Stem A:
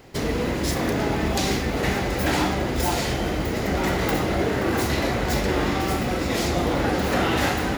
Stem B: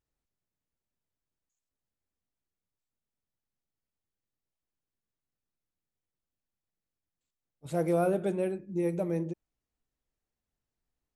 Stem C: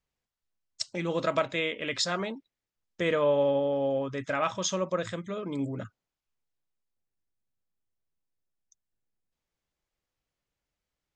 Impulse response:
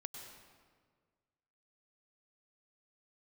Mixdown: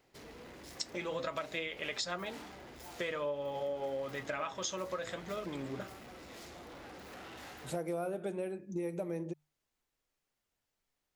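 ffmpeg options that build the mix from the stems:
-filter_complex "[0:a]asoftclip=type=tanh:threshold=-24.5dB,volume=-19.5dB[link_01];[1:a]bandreject=frequency=50:width_type=h:width=6,bandreject=frequency=100:width_type=h:width=6,bandreject=frequency=150:width_type=h:width=6,volume=3dB[link_02];[2:a]flanger=delay=4.8:depth=3.7:regen=52:speed=0.52:shape=triangular,bandreject=frequency=55.85:width_type=h:width=4,bandreject=frequency=111.7:width_type=h:width=4,bandreject=frequency=167.55:width_type=h:width=4,bandreject=frequency=223.4:width_type=h:width=4,bandreject=frequency=279.25:width_type=h:width=4,bandreject=frequency=335.1:width_type=h:width=4,bandreject=frequency=390.95:width_type=h:width=4,bandreject=frequency=446.8:width_type=h:width=4,bandreject=frequency=502.65:width_type=h:width=4,bandreject=frequency=558.5:width_type=h:width=4,bandreject=frequency=614.35:width_type=h:width=4,bandreject=frequency=670.2:width_type=h:width=4,bandreject=frequency=726.05:width_type=h:width=4,bandreject=frequency=781.9:width_type=h:width=4,volume=3dB[link_03];[link_01][link_02][link_03]amix=inputs=3:normalize=0,lowshelf=frequency=300:gain=-8,acompressor=threshold=-34dB:ratio=6"

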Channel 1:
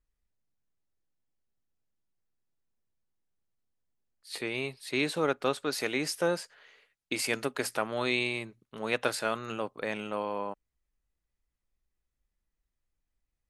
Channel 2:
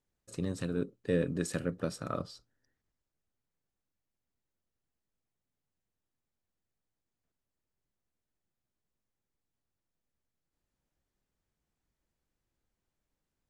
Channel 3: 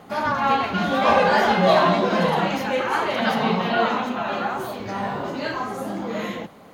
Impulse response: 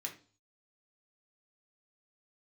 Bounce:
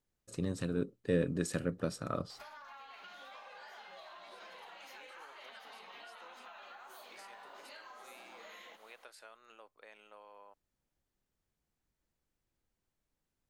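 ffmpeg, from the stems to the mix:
-filter_complex "[0:a]volume=-18.5dB[link_01];[1:a]volume=-1dB[link_02];[2:a]tiltshelf=frequency=1100:gain=-5.5,acompressor=threshold=-27dB:ratio=6,adelay=2300,volume=-11dB[link_03];[link_01][link_03]amix=inputs=2:normalize=0,highpass=530,acompressor=threshold=-50dB:ratio=6,volume=0dB[link_04];[link_02][link_04]amix=inputs=2:normalize=0"

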